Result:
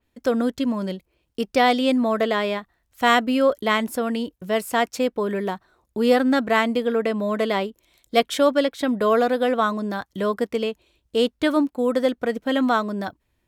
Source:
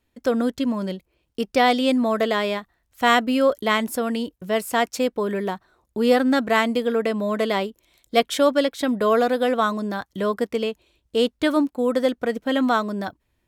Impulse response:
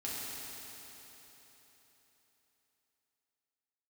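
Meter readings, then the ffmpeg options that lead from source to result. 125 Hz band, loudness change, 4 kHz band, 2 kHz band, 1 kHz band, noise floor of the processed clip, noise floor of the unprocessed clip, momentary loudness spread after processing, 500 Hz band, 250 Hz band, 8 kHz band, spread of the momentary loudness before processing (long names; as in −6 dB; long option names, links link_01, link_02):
can't be measured, 0.0 dB, −0.5 dB, 0.0 dB, 0.0 dB, −72 dBFS, −72 dBFS, 10 LU, 0.0 dB, 0.0 dB, −2.0 dB, 10 LU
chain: -af "adynamicequalizer=threshold=0.0126:dfrequency=3900:dqfactor=0.7:tfrequency=3900:tqfactor=0.7:attack=5:release=100:ratio=0.375:range=2.5:mode=cutabove:tftype=highshelf"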